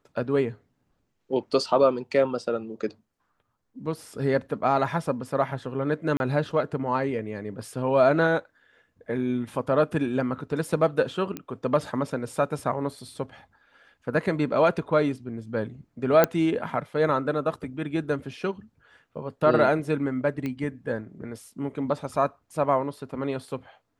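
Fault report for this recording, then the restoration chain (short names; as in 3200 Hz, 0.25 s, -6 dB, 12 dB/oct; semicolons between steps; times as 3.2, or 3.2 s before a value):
6.17–6.2 gap 31 ms
11.37 pop -17 dBFS
16.24 pop -6 dBFS
20.46 pop -19 dBFS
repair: de-click; interpolate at 6.17, 31 ms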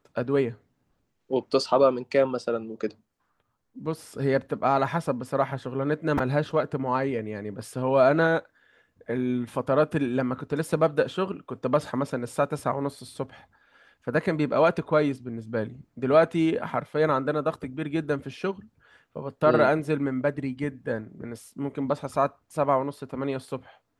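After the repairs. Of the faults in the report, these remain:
none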